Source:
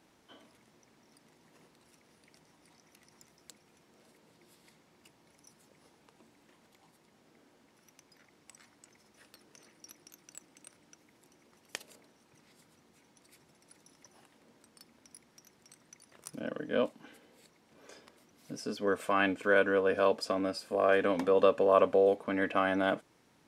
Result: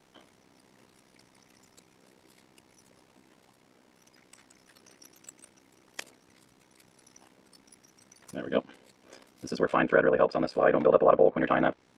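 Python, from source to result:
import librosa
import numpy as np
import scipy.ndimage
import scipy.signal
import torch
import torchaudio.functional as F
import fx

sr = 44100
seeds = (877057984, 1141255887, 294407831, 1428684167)

y = fx.stretch_vocoder(x, sr, factor=0.51)
y = fx.env_lowpass_down(y, sr, base_hz=1800.0, full_db=-24.0)
y = y * np.sin(2.0 * np.pi * 32.0 * np.arange(len(y)) / sr)
y = y * 10.0 ** (8.0 / 20.0)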